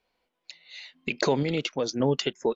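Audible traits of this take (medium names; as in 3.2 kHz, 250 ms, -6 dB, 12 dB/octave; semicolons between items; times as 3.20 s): random-step tremolo 3.5 Hz; Vorbis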